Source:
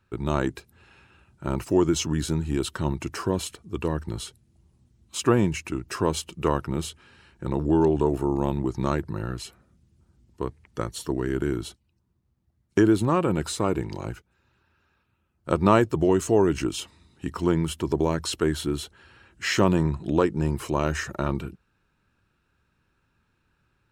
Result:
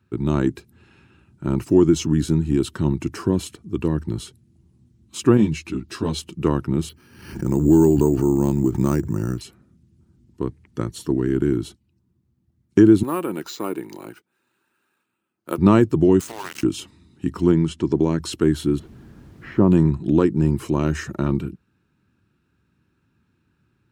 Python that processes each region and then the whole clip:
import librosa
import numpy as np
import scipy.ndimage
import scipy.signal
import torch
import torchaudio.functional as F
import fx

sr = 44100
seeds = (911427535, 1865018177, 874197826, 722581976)

y = fx.chain(x, sr, fx.peak_eq(hz=3900.0, db=10.0, octaves=0.81),
    fx.ensemble(), at=(5.37, 6.19))
y = fx.chain(y, sr, fx.resample_bad(factor=6, down='filtered', up='hold'),
    fx.pre_swell(db_per_s=71.0), at=(6.89, 9.41))
y = fx.chain(y, sr, fx.bessel_highpass(hz=510.0, order=2),
    fx.peak_eq(hz=6000.0, db=5.0, octaves=0.58),
    fx.resample_bad(factor=4, down='filtered', up='hold'), at=(13.03, 15.58))
y = fx.chain(y, sr, fx.highpass(hz=840.0, slope=24),
    fx.transient(attack_db=3, sustain_db=11),
    fx.sample_gate(floor_db=-31.0), at=(16.2, 16.63))
y = fx.chain(y, sr, fx.lowpass(hz=8000.0, slope=24),
    fx.low_shelf(hz=68.0, db=-9.0), at=(17.52, 18.2))
y = fx.cheby1_lowpass(y, sr, hz=970.0, order=2, at=(18.78, 19.7), fade=0.02)
y = fx.dmg_noise_colour(y, sr, seeds[0], colour='brown', level_db=-43.0, at=(18.78, 19.7), fade=0.02)
y = scipy.signal.sosfilt(scipy.signal.butter(2, 85.0, 'highpass', fs=sr, output='sos'), y)
y = fx.low_shelf_res(y, sr, hz=410.0, db=7.5, q=1.5)
y = y * librosa.db_to_amplitude(-1.0)